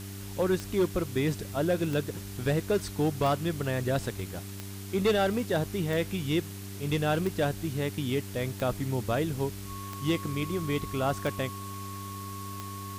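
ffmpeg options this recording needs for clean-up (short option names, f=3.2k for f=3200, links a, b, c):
-af "adeclick=t=4,bandreject=f=98.6:t=h:w=4,bandreject=f=197.2:t=h:w=4,bandreject=f=295.8:t=h:w=4,bandreject=f=394.4:t=h:w=4,bandreject=f=1.1k:w=30,afwtdn=0.005"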